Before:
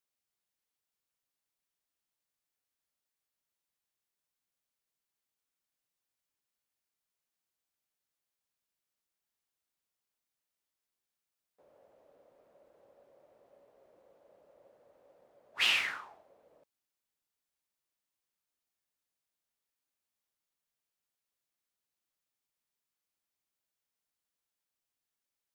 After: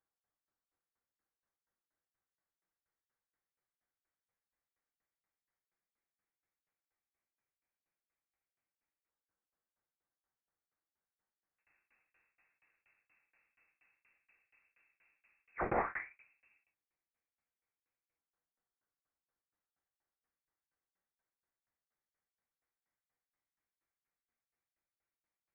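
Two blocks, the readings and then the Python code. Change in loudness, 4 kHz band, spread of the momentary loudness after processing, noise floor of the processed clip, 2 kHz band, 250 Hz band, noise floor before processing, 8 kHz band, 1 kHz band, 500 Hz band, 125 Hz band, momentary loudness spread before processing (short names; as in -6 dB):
-8.0 dB, under -40 dB, 16 LU, under -85 dBFS, -10.0 dB, +13.5 dB, under -85 dBFS, under -25 dB, +6.0 dB, +11.0 dB, n/a, 13 LU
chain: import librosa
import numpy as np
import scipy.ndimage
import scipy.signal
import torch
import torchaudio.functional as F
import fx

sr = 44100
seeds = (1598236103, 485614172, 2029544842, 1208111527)

y = fx.low_shelf(x, sr, hz=420.0, db=-6.5)
y = fx.rev_gated(y, sr, seeds[0], gate_ms=120, shape='falling', drr_db=4.5)
y = fx.filter_lfo_highpass(y, sr, shape='saw_down', hz=0.11, low_hz=790.0, high_hz=1800.0, q=1.4)
y = fx.tremolo_shape(y, sr, shape='saw_down', hz=4.2, depth_pct=100)
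y = fx.freq_invert(y, sr, carrier_hz=3200)
y = fx.over_compress(y, sr, threshold_db=-31.0, ratio=-1.0)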